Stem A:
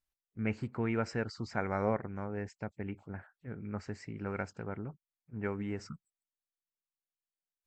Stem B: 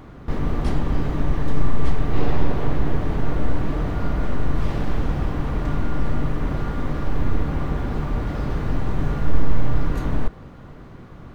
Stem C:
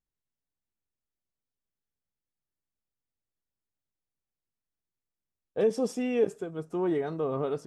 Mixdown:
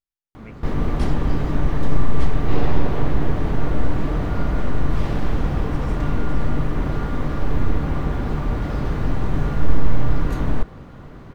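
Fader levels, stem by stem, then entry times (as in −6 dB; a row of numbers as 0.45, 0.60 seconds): −8.5, +1.5, −12.0 decibels; 0.00, 0.35, 0.00 seconds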